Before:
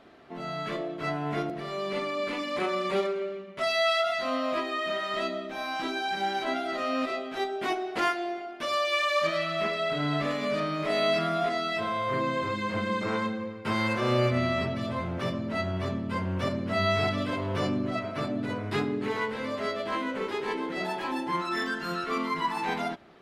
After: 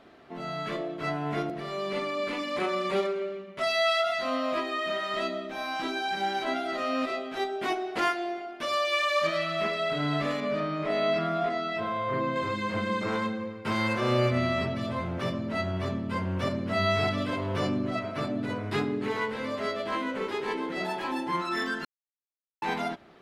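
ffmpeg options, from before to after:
-filter_complex "[0:a]asettb=1/sr,asplit=3[a][b][c];[a]atrim=end=10.404[d];[b]atrim=start=10.4:end=12.36,asetpts=PTS-STARTPTS,afade=t=in:d=0.004:c=qsin,afade=t=out:st=1.956:d=0.004:c=qsin,lowpass=f=2.2k:p=1[e];[c]atrim=start=12.356[f];[d][e]acrossfade=d=0.004:c1=hsin:c2=qsin[g];[g][f]acrossfade=d=0.004:c1=qsin:c2=hsin,asettb=1/sr,asplit=3[h][i][j];[h]atrim=end=13.104[k];[i]atrim=start=13.1:end=13.78,asetpts=PTS-STARTPTS,afade=t=in:d=0.004:c=qsin,afade=t=out:st=0.676:d=0.004:c=qsin,volume=22dB,asoftclip=hard,volume=-22dB[l];[j]atrim=start=13.776[m];[k][l]acrossfade=d=0.004:c1=hsin:c2=qsin[n];[n][m]acrossfade=d=0.004:c1=qsin:c2=hsin,asplit=3[o][p][q];[o]atrim=end=21.85,asetpts=PTS-STARTPTS,afade=t=out:st=21.846:d=0.004:c=hsin[r];[p]atrim=start=21.85:end=22.62,asetpts=PTS-STARTPTS,volume=0[s];[q]atrim=start=22.62,asetpts=PTS-STARTPTS,afade=t=in:d=0.004:c=hsin[t];[r][s][t]concat=n=3:v=0:a=1"

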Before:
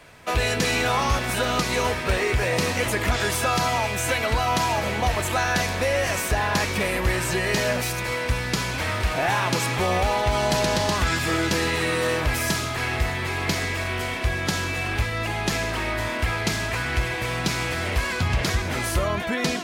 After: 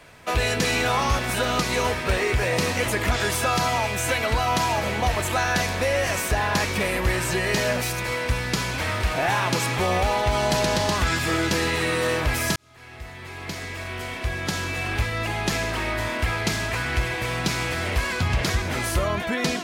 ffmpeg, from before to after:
-filter_complex "[0:a]asplit=2[a][b];[a]atrim=end=12.56,asetpts=PTS-STARTPTS,afade=t=out:st=12.556:d=0.004:c=hsin[c];[b]atrim=start=12.56,asetpts=PTS-STARTPTS,afade=t=in:d=2.48[d];[c][d]concat=n=2:v=0:a=1"

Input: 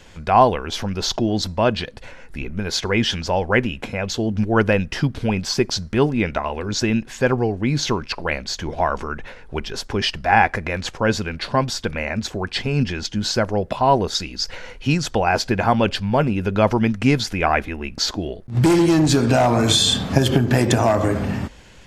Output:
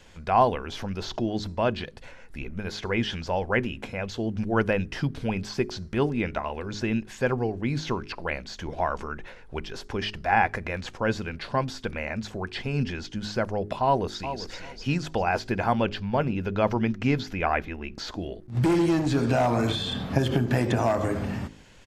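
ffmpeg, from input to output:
-filter_complex "[0:a]asplit=2[a][b];[b]afade=t=in:st=13.84:d=0.01,afade=t=out:st=14.57:d=0.01,aecho=0:1:390|780|1170:0.298538|0.0597077|0.0119415[c];[a][c]amix=inputs=2:normalize=0,asettb=1/sr,asplit=3[d][e][f];[d]atrim=end=15.834[g];[e]atrim=start=15.83:end=17.97,asetpts=PTS-STARTPTS,afade=t=in:d=0.004:c=qsin,afade=t=out:st=2.136:d=0.004:c=qsin,equalizer=f=9.3k:w=2.2:g=-14[h];[f]atrim=start=17.966[i];[g][h]acrossfade=d=0.004:c1=hsin:c2=qsin[j];[j][i]acrossfade=d=0.004:c1=qsin:c2=hsin,asettb=1/sr,asplit=3[k][l][m];[k]atrim=end=19.674[n];[l]atrim=start=19.67:end=20.16,asetpts=PTS-STARTPTS,afade=t=in:d=0.004:c=qsin,afade=t=out:st=0.486:d=0.004:c=qsin,equalizer=f=7.2k:t=o:w=1.1:g=-8.5[o];[m]atrim=start=20.156[p];[n][o]acrossfade=d=0.004:c1=hsin:c2=qsin[q];[q][p]acrossfade=d=0.004:c1=qsin:c2=hsin,acrossover=split=3200[r][s];[s]acompressor=threshold=-34dB:ratio=4:attack=1:release=60[t];[r][t]amix=inputs=2:normalize=0,bandreject=f=52.06:t=h:w=4,bandreject=f=104.12:t=h:w=4,bandreject=f=156.18:t=h:w=4,bandreject=f=208.24:t=h:w=4,bandreject=f=260.3:t=h:w=4,bandreject=f=312.36:t=h:w=4,bandreject=f=364.42:t=h:w=4,bandreject=f=416.48:t=h:w=4,volume=-6.5dB"

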